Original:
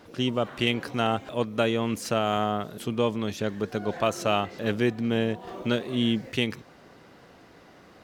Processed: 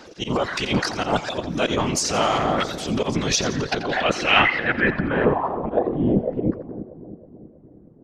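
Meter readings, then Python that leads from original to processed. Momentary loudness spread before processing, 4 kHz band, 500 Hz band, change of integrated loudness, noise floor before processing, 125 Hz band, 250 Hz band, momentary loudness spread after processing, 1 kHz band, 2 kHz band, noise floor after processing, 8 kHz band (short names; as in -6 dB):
5 LU, +6.0 dB, +4.0 dB, +5.5 dB, -53 dBFS, +4.5 dB, +3.5 dB, 8 LU, +6.5 dB, +10.5 dB, -49 dBFS, +14.0 dB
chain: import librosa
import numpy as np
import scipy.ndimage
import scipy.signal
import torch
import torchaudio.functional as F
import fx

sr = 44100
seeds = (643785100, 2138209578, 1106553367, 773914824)

p1 = fx.spec_box(x, sr, start_s=4.25, length_s=1.0, low_hz=1300.0, high_hz=5300.0, gain_db=7)
p2 = fx.dereverb_blind(p1, sr, rt60_s=0.66)
p3 = fx.low_shelf(p2, sr, hz=120.0, db=-11.0)
p4 = fx.transient(p3, sr, attack_db=-8, sustain_db=12)
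p5 = fx.rider(p4, sr, range_db=10, speed_s=0.5)
p6 = p4 + F.gain(torch.from_numpy(p5), 1.0).numpy()
p7 = fx.auto_swell(p6, sr, attack_ms=112.0)
p8 = fx.filter_sweep_lowpass(p7, sr, from_hz=6100.0, to_hz=220.0, start_s=3.28, end_s=7.15, q=2.1)
p9 = fx.whisperise(p8, sr, seeds[0])
y = p9 + fx.echo_split(p9, sr, split_hz=740.0, low_ms=319, high_ms=86, feedback_pct=52, wet_db=-13, dry=0)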